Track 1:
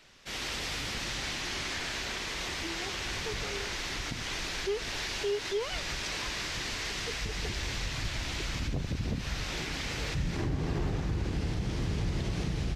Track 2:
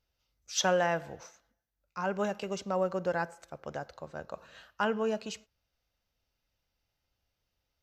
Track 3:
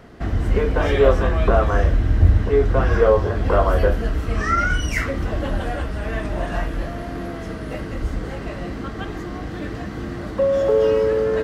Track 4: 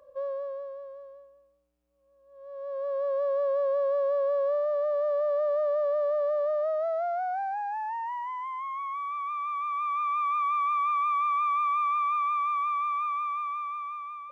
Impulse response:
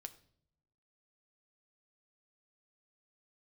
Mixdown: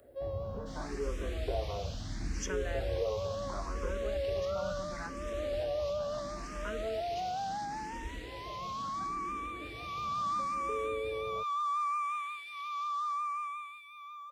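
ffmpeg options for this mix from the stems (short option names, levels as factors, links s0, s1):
-filter_complex "[0:a]highpass=1500,adelay=400,volume=0.251,asplit=2[s0][s1];[s1]volume=0.562[s2];[1:a]adelay=1850,volume=0.473[s3];[2:a]lowpass=1100,lowshelf=f=180:g=-5,volume=0.237[s4];[3:a]lowshelf=f=460:g=-9,aexciter=amount=2.6:drive=7.1:freq=2900,volume=0.794[s5];[s2]aecho=0:1:333|666|999|1332|1665:1|0.39|0.152|0.0593|0.0231[s6];[s0][s3][s4][s5][s6]amix=inputs=5:normalize=0,acrossover=split=140|3000[s7][s8][s9];[s8]acompressor=threshold=0.0282:ratio=2.5[s10];[s7][s10][s9]amix=inputs=3:normalize=0,asplit=2[s11][s12];[s12]afreqshift=0.73[s13];[s11][s13]amix=inputs=2:normalize=1"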